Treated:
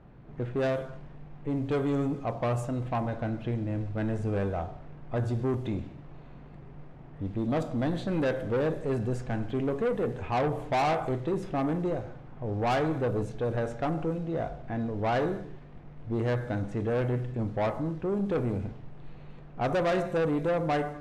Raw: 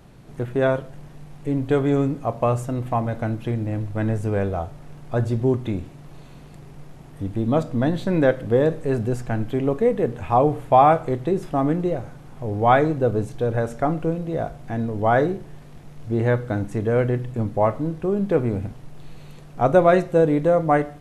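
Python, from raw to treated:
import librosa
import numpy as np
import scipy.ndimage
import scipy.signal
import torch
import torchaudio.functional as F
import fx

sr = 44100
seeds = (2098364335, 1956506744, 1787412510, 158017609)

y = fx.rev_gated(x, sr, seeds[0], gate_ms=280, shape='falling', drr_db=11.0)
y = fx.env_lowpass(y, sr, base_hz=1800.0, full_db=-16.0)
y = 10.0 ** (-18.5 / 20.0) * np.tanh(y / 10.0 ** (-18.5 / 20.0))
y = y * 10.0 ** (-4.5 / 20.0)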